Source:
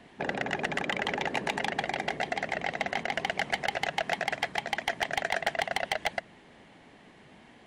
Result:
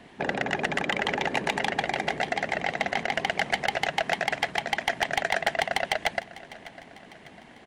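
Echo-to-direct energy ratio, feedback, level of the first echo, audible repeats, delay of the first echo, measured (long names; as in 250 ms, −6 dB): −17.0 dB, 51%, −18.5 dB, 3, 600 ms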